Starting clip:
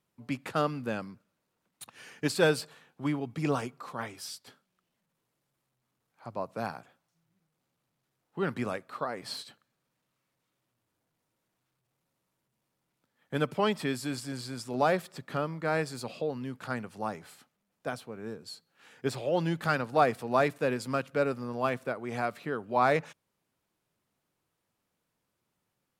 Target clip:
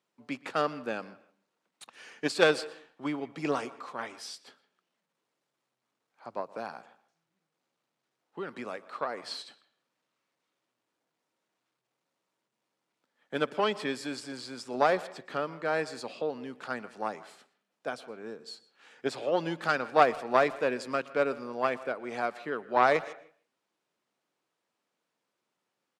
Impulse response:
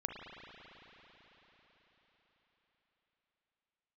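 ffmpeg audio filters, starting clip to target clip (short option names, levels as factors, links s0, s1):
-filter_complex "[0:a]asettb=1/sr,asplit=3[s0][s1][s2];[s0]atrim=end=6.404[s3];[s1]atrim=start=6.4:end=8.9,asetpts=PTS-STARTPTS,afade=t=in:d=0.004:c=qsin,afade=t=out:st=2.496:d=0.004:c=qsin,acompressor=threshold=0.0251:ratio=6[s4];[s2]atrim=start=8.896[s5];[s3][s4]acrossfade=d=0.004:c1=hsin:c2=qsin[s6];[s6][s5]acrossfade=d=0.004:c1=qsin:c2=hsin,aeval=exprs='0.299*(cos(1*acos(clip(val(0)/0.299,-1,1)))-cos(1*PI/2))+0.0531*(cos(3*acos(clip(val(0)/0.299,-1,1)))-cos(3*PI/2))+0.0188*(cos(4*acos(clip(val(0)/0.299,-1,1)))-cos(4*PI/2))+0.00531*(cos(5*acos(clip(val(0)/0.299,-1,1)))-cos(5*PI/2))':c=same,highpass=290,lowpass=7300,asplit=2[s7][s8];[s8]adelay=160,highpass=300,lowpass=3400,asoftclip=type=hard:threshold=0.0794,volume=0.1[s9];[s7][s9]amix=inputs=2:normalize=0,asplit=2[s10][s11];[1:a]atrim=start_sample=2205,afade=t=out:st=0.26:d=0.01,atrim=end_sample=11907,adelay=120[s12];[s11][s12]afir=irnorm=-1:irlink=0,volume=0.0944[s13];[s10][s13]amix=inputs=2:normalize=0,volume=1.88"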